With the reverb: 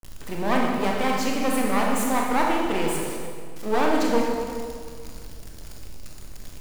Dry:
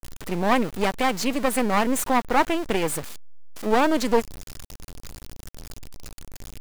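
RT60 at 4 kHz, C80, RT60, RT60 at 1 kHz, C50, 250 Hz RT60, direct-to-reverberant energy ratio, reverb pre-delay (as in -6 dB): 1.5 s, 2.0 dB, 2.0 s, 1.9 s, 0.0 dB, 2.2 s, -2.0 dB, 23 ms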